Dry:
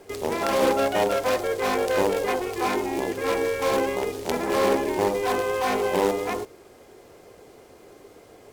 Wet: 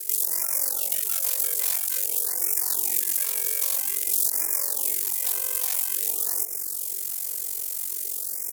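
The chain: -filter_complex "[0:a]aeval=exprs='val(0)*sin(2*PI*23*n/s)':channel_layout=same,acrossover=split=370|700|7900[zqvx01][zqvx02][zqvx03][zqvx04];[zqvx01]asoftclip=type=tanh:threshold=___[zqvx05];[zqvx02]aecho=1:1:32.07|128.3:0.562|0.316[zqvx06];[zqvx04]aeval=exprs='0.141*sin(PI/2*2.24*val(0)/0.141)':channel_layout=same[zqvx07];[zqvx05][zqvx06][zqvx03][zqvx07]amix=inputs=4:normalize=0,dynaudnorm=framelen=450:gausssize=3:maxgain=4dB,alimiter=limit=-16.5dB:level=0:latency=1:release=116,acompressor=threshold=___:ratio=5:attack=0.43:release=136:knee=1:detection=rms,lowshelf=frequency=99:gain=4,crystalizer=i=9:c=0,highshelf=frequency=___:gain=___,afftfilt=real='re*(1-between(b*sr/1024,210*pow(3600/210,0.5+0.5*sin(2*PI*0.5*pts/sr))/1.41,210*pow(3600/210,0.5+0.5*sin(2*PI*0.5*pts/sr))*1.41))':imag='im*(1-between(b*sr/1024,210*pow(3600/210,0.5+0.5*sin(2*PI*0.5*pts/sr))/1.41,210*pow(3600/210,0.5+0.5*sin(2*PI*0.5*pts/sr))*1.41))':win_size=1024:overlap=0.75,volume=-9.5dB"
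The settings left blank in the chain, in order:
-37dB, -33dB, 3k, 12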